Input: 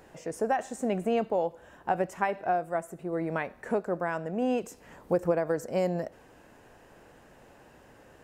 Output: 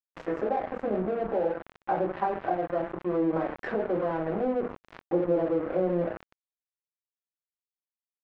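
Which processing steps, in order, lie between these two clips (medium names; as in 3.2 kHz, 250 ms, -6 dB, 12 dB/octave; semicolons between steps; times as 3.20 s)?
low-pass that closes with the level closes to 540 Hz, closed at -25.5 dBFS; high-pass 260 Hz 12 dB/octave; thinning echo 92 ms, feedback 52%, high-pass 600 Hz, level -16 dB; reverberation RT60 0.35 s, pre-delay 3 ms, DRR -6.5 dB; crossover distortion -39.5 dBFS; low-pass 1.9 kHz 12 dB/octave; level flattener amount 50%; trim -2 dB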